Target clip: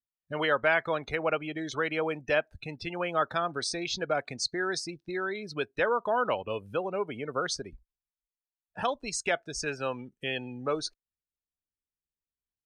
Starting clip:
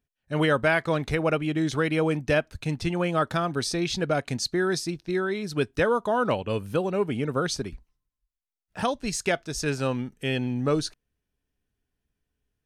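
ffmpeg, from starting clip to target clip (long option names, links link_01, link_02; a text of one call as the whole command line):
ffmpeg -i in.wav -filter_complex "[0:a]afftdn=noise_reduction=21:noise_floor=-38,acrossover=split=430[link_01][link_02];[link_01]acompressor=threshold=-42dB:ratio=4[link_03];[link_03][link_02]amix=inputs=2:normalize=0,volume=-1.5dB" out.wav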